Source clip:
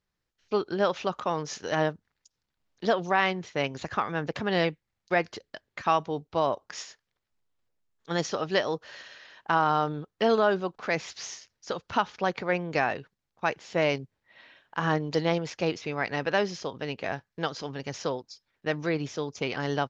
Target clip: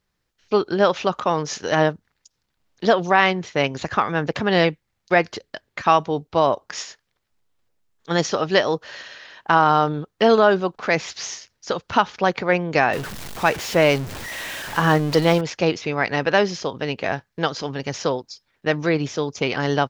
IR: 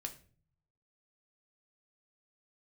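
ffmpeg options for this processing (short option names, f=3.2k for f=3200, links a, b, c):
-filter_complex "[0:a]asettb=1/sr,asplit=3[a][b][c];[a]atrim=end=12.934[d];[b]atrim=start=12.93:end=15.41,asetpts=PTS-STARTPTS,afade=t=in:d=0.004:c=qsin,afade=t=out:st=2.476:d=0.004:c=qsin,aeval=exprs='val(0)+0.5*0.0188*sgn(val(0))':c=same[e];[c]atrim=start=15.406[f];[d][e]acrossfade=d=0.004:c1=hsin:c2=qsin[g];[g][f]acrossfade=d=0.004:c1=qsin:c2=hsin,volume=8dB"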